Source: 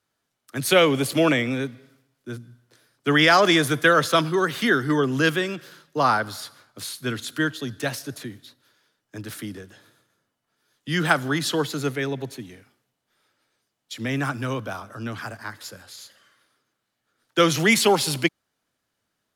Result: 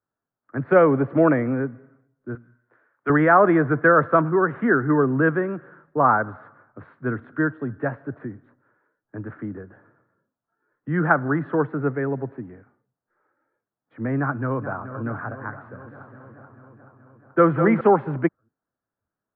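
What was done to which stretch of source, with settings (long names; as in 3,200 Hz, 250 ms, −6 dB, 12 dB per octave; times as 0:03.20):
0:02.35–0:03.10: spectral tilt +4 dB per octave
0:14.18–0:15.04: delay throw 430 ms, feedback 65%, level −11.5 dB
0:15.68–0:17.81: echo with a time of its own for lows and highs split 420 Hz, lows 261 ms, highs 199 ms, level −7.5 dB
whole clip: Butterworth low-pass 1,600 Hz 36 dB per octave; noise reduction from a noise print of the clip's start 10 dB; level +2.5 dB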